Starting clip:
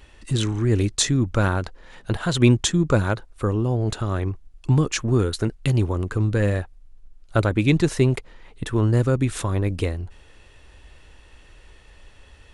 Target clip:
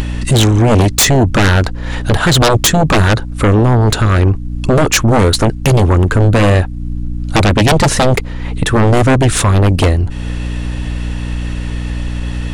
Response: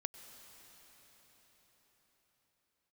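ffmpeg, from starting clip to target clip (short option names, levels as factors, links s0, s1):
-af "aeval=exprs='val(0)+0.01*(sin(2*PI*60*n/s)+sin(2*PI*2*60*n/s)/2+sin(2*PI*3*60*n/s)/3+sin(2*PI*4*60*n/s)/4+sin(2*PI*5*60*n/s)/5)':c=same,acompressor=mode=upward:threshold=0.0355:ratio=2.5,aeval=exprs='0.631*sin(PI/2*5.62*val(0)/0.631)':c=same,volume=0.841"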